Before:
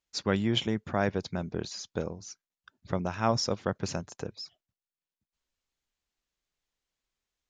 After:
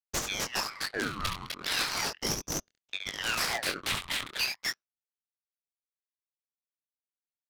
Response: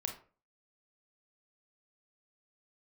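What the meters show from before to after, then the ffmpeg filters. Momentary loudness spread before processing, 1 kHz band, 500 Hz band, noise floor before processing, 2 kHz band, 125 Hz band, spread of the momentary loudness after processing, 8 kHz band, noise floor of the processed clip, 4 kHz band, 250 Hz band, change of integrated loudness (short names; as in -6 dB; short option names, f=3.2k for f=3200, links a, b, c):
16 LU, -1.0 dB, -8.5 dB, under -85 dBFS, +7.5 dB, -10.0 dB, 7 LU, +8.0 dB, under -85 dBFS, +5.0 dB, -10.0 dB, 0.0 dB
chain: -filter_complex "[0:a]aexciter=amount=10.7:drive=6.9:freq=2.9k,acrusher=samples=5:mix=1:aa=0.000001,highpass=f=360:w=0.5412,highpass=f=360:w=1.3066,equalizer=f=440:t=q:w=4:g=3,equalizer=f=660:t=q:w=4:g=9,equalizer=f=1.4k:t=q:w=4:g=8,equalizer=f=2k:t=q:w=4:g=-8,equalizer=f=2.9k:t=q:w=4:g=6,lowpass=f=3.8k:w=0.5412,lowpass=f=3.8k:w=1.3066,aeval=exprs='sgn(val(0))*max(abs(val(0))-0.0266,0)':c=same,equalizer=f=1.4k:w=1.5:g=-8.5,acompressor=threshold=-19dB:ratio=4,asplit=2[a][b];[1:a]atrim=start_sample=2205,asetrate=48510,aresample=44100[c];[b][c]afir=irnorm=-1:irlink=0,volume=-16.5dB[d];[a][d]amix=inputs=2:normalize=0,aeval=exprs='(mod(5.31*val(0)+1,2)-1)/5.31':c=same,flanger=delay=19.5:depth=6.3:speed=1.3,adynamicsmooth=sensitivity=7:basefreq=950,aecho=1:1:69.97|253.6:0.501|0.794,aeval=exprs='val(0)*sin(2*PI*1900*n/s+1900*0.7/0.37*sin(2*PI*0.37*n/s))':c=same"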